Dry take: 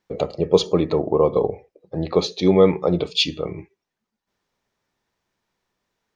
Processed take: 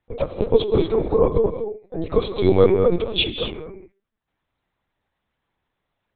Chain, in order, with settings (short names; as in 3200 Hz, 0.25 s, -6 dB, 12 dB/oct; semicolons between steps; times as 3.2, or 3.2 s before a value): bell 66 Hz -12.5 dB 1.1 oct; non-linear reverb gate 0.27 s rising, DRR 7 dB; LPC vocoder at 8 kHz pitch kept